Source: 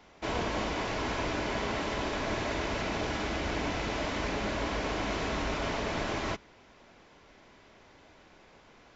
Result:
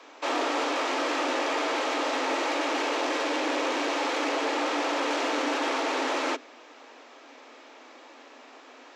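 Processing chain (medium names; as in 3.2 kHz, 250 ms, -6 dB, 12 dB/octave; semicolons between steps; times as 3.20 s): saturation -30 dBFS, distortion -14 dB; frequency shift +240 Hz; trim +7.5 dB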